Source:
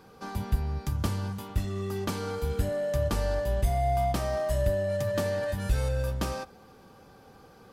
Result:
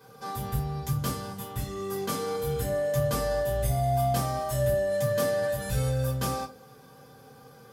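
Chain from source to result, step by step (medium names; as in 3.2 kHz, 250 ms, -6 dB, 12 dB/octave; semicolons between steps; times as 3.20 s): high-pass 99 Hz 12 dB/octave; treble shelf 6 kHz +10 dB; reverberation RT60 0.30 s, pre-delay 3 ms, DRR -6 dB; trim -8 dB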